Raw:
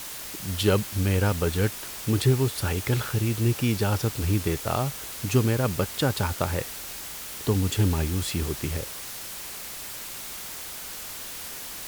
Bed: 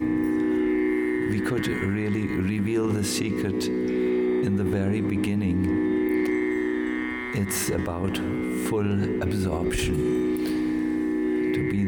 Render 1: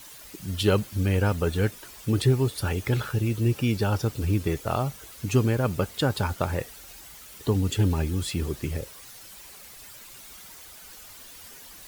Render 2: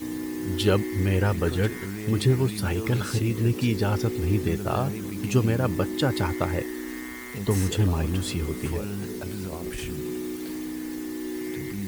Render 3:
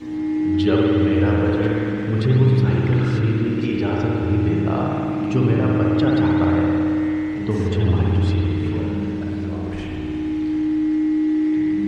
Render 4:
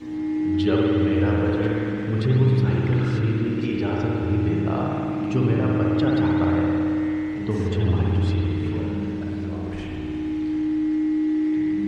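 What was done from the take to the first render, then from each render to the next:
broadband denoise 11 dB, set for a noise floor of −38 dBFS
mix in bed −8 dB
high-frequency loss of the air 150 metres; spring reverb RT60 2.8 s, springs 55 ms, chirp 80 ms, DRR −3.5 dB
level −3 dB

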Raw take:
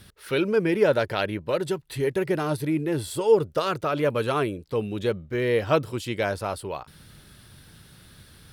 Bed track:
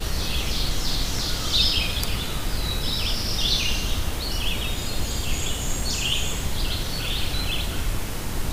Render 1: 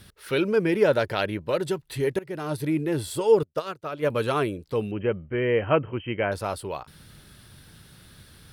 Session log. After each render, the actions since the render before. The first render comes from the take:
0:02.19–0:02.66: fade in, from −20 dB
0:03.43–0:04.10: expander for the loud parts 2.5 to 1, over −37 dBFS
0:04.91–0:06.32: linear-phase brick-wall low-pass 3,200 Hz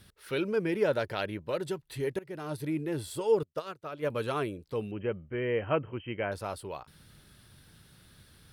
level −7 dB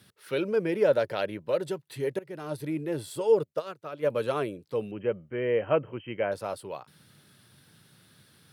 high-pass filter 110 Hz 24 dB per octave
dynamic equaliser 550 Hz, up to +7 dB, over −43 dBFS, Q 2.4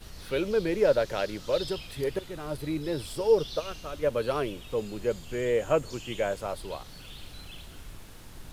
mix in bed track −19 dB

